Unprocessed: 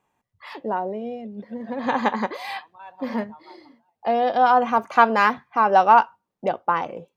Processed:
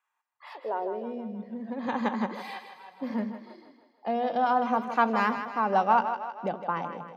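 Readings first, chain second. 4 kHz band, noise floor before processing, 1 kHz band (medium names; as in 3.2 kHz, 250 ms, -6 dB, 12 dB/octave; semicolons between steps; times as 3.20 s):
-8.5 dB, -80 dBFS, -8.0 dB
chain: high-pass sweep 1.4 kHz -> 180 Hz, 0.05–1.33 s; two-band feedback delay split 410 Hz, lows 81 ms, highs 158 ms, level -9 dB; trim -9 dB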